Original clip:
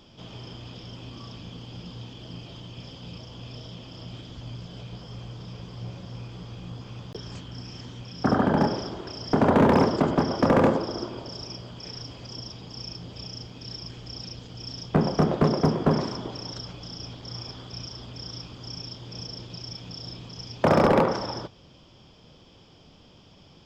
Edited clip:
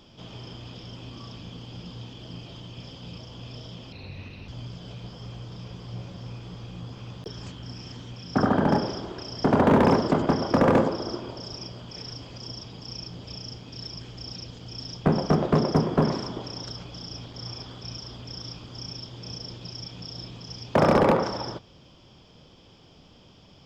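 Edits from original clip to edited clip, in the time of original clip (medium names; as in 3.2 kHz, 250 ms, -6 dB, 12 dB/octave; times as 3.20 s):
3.92–4.37 s: speed 80%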